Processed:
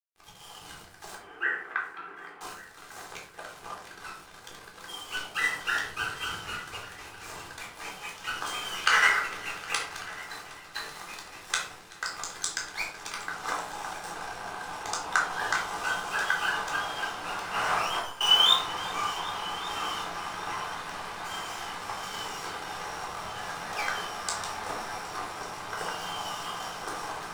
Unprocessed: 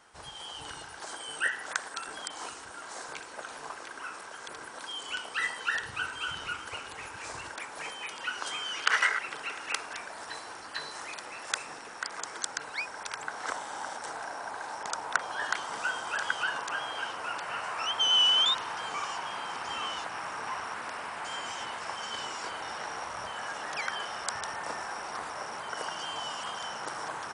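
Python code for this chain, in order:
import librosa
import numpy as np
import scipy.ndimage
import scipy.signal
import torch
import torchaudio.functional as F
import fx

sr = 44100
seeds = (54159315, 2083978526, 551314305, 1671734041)

y = fx.over_compress(x, sr, threshold_db=-35.0, ratio=-1.0, at=(17.54, 18.21))
y = np.sign(y) * np.maximum(np.abs(y) - 10.0 ** (-41.0 / 20.0), 0.0)
y = fx.cabinet(y, sr, low_hz=180.0, low_slope=24, high_hz=2200.0, hz=(210.0, 380.0, 570.0, 920.0), db=(-7, 6, -10, -4), at=(1.15, 2.41))
y = fx.echo_heads(y, sr, ms=382, heads='all three', feedback_pct=42, wet_db=-23)
y = fx.room_shoebox(y, sr, seeds[0], volume_m3=510.0, walls='furnished', distance_m=3.8)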